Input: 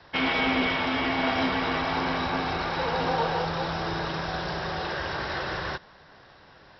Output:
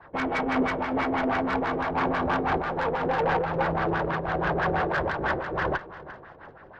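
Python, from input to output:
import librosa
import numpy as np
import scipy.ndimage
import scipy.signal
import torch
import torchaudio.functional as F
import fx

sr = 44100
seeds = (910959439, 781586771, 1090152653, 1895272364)

p1 = fx.cvsd(x, sr, bps=32000)
p2 = scipy.signal.sosfilt(scipy.signal.butter(2, 4500.0, 'lowpass', fs=sr, output='sos'), p1)
p3 = fx.rider(p2, sr, range_db=10, speed_s=0.5)
p4 = p2 + (p3 * 10.0 ** (-1.0 / 20.0))
p5 = fx.filter_lfo_lowpass(p4, sr, shape='sine', hz=6.1, low_hz=410.0, high_hz=1800.0, q=2.2)
p6 = fx.tube_stage(p5, sr, drive_db=17.0, bias=0.35)
p7 = p6 + fx.echo_feedback(p6, sr, ms=348, feedback_pct=36, wet_db=-16.5, dry=0)
y = fx.am_noise(p7, sr, seeds[0], hz=5.7, depth_pct=65)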